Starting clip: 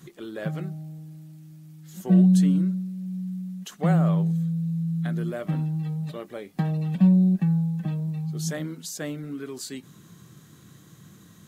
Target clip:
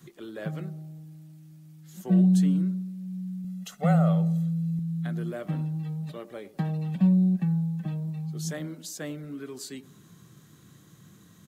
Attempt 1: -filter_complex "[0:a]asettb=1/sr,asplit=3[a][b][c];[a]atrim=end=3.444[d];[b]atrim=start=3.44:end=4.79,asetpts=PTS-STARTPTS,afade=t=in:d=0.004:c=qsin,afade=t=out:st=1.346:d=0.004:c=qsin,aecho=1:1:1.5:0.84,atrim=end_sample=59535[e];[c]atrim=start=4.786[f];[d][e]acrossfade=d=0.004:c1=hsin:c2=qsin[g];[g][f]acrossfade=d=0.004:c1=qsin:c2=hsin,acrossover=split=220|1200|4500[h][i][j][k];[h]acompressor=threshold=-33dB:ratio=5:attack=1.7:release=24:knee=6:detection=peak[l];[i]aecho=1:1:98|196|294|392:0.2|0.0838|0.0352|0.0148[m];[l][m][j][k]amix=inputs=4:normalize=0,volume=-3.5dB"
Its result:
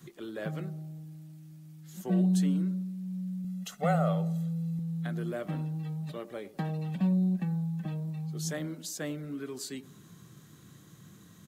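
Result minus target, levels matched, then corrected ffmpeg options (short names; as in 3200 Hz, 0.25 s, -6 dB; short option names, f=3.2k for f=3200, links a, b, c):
compressor: peak gain reduction +14.5 dB
-filter_complex "[0:a]asettb=1/sr,asplit=3[a][b][c];[a]atrim=end=3.444[d];[b]atrim=start=3.44:end=4.79,asetpts=PTS-STARTPTS,afade=t=in:d=0.004:c=qsin,afade=t=out:st=1.346:d=0.004:c=qsin,aecho=1:1:1.5:0.84,atrim=end_sample=59535[e];[c]atrim=start=4.786[f];[d][e]acrossfade=d=0.004:c1=hsin:c2=qsin[g];[g][f]acrossfade=d=0.004:c1=qsin:c2=hsin,acrossover=split=220|1200|4500[h][i][j][k];[i]aecho=1:1:98|196|294|392:0.2|0.0838|0.0352|0.0148[l];[h][l][j][k]amix=inputs=4:normalize=0,volume=-3.5dB"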